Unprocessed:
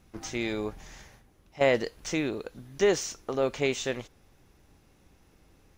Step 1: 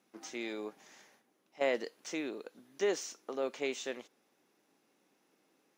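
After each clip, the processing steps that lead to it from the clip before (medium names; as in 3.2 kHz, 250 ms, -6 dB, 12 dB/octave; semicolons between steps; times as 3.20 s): high-pass 230 Hz 24 dB/octave; trim -8 dB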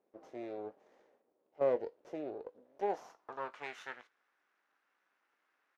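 half-wave rectifier; doubling 20 ms -14 dB; band-pass sweep 500 Hz -> 1.5 kHz, 2.56–3.74 s; trim +8 dB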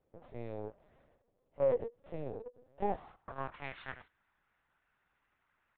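LPC vocoder at 8 kHz pitch kept; trim +1 dB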